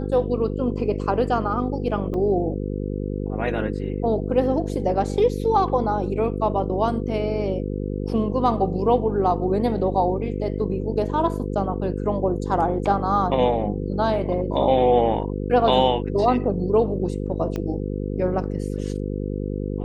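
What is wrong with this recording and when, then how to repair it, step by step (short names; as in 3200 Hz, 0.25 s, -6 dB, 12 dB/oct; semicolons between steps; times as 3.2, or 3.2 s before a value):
buzz 50 Hz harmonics 10 -27 dBFS
2.14 gap 3.7 ms
17.56 pop -16 dBFS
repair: de-click; de-hum 50 Hz, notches 10; interpolate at 2.14, 3.7 ms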